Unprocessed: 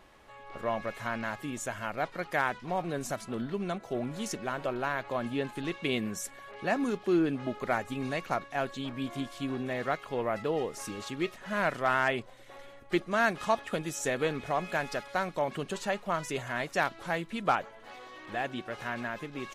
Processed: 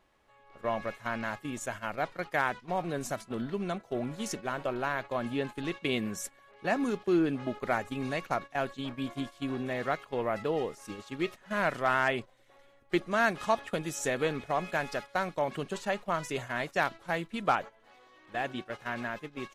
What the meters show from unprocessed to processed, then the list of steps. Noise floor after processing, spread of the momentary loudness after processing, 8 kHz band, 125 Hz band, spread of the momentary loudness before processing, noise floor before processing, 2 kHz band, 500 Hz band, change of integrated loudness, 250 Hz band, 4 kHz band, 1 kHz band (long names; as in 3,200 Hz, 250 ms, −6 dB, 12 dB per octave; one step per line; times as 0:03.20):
−61 dBFS, 9 LU, −1.0 dB, −0.5 dB, 9 LU, −51 dBFS, 0.0 dB, 0.0 dB, 0.0 dB, 0.0 dB, −0.5 dB, 0.0 dB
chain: noise gate −38 dBFS, range −11 dB